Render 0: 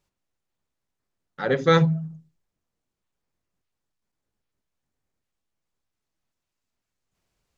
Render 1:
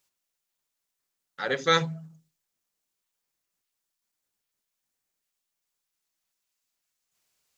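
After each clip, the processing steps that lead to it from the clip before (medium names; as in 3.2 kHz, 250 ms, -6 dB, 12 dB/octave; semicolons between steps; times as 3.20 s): tilt EQ +3.5 dB/octave; trim -3 dB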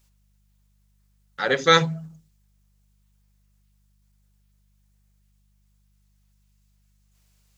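mains buzz 50 Hz, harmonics 4, -70 dBFS -7 dB/octave; trim +6 dB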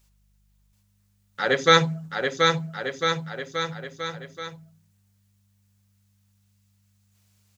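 bouncing-ball echo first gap 730 ms, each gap 0.85×, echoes 5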